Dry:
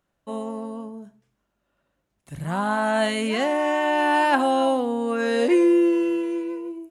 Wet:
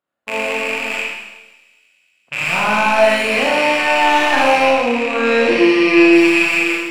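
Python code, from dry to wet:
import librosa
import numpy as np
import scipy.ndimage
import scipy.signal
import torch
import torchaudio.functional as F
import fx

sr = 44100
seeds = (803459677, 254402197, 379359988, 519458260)

p1 = fx.rattle_buzz(x, sr, strikes_db=-40.0, level_db=-11.0)
p2 = fx.highpass(p1, sr, hz=530.0, slope=6)
p3 = fx.high_shelf(p2, sr, hz=4100.0, db=-8.0)
p4 = fx.notch(p3, sr, hz=5900.0, q=5.4)
p5 = fx.leveller(p4, sr, passes=2)
p6 = fx.env_lowpass(p5, sr, base_hz=1200.0, full_db=-25.0, at=(0.95, 2.37))
p7 = fx.air_absorb(p6, sr, metres=69.0, at=(4.62, 6.13))
p8 = p7 + fx.echo_wet_highpass(p7, sr, ms=116, feedback_pct=82, hz=3100.0, wet_db=-23, dry=0)
p9 = fx.rev_schroeder(p8, sr, rt60_s=1.1, comb_ms=26, drr_db=-5.0)
y = p9 * 10.0 ** (-2.5 / 20.0)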